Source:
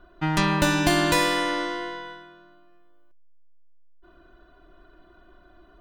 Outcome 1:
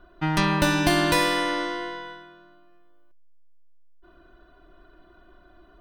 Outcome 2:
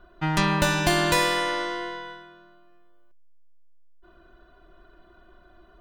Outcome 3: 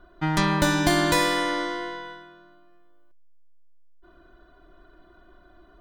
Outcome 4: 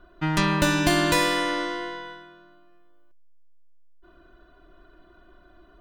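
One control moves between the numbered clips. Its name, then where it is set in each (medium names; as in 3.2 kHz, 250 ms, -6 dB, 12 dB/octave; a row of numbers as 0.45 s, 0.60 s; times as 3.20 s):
band-stop, frequency: 7.1 kHz, 290 Hz, 2.7 kHz, 820 Hz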